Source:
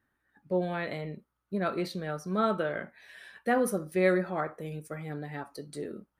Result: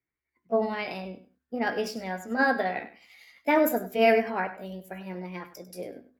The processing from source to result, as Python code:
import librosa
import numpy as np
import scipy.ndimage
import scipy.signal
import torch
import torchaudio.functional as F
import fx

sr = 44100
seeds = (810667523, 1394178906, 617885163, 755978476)

y = fx.pitch_heads(x, sr, semitones=3.5)
y = fx.hum_notches(y, sr, base_hz=50, count=5)
y = fx.echo_feedback(y, sr, ms=99, feedback_pct=21, wet_db=-13.0)
y = fx.band_widen(y, sr, depth_pct=40)
y = F.gain(torch.from_numpy(y), 3.5).numpy()